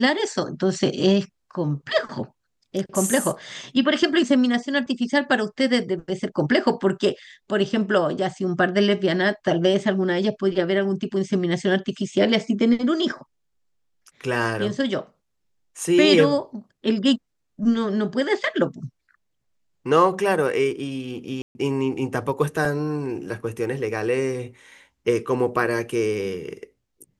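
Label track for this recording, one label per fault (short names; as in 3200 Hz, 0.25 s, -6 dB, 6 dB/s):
21.420000	21.550000	gap 0.13 s
22.650000	22.650000	gap 2.4 ms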